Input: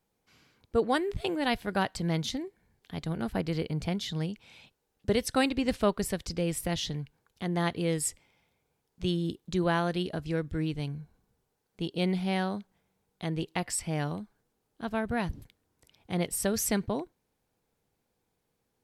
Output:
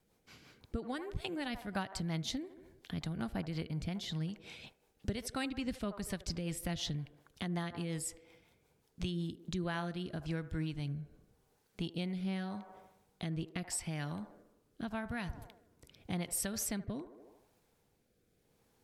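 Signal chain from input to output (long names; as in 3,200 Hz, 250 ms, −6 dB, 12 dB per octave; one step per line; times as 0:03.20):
on a send: delay with a band-pass on its return 76 ms, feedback 49%, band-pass 740 Hz, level −12.5 dB
on the sum: downward compressor 2.5 to 1, threshold −43 dBFS, peak gain reduction 15.5 dB
dynamic equaliser 450 Hz, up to −8 dB, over −57 dBFS, Q 1.7
rotating-speaker cabinet horn 5.5 Hz, later 0.85 Hz, at 0:09.14
level +6.5 dB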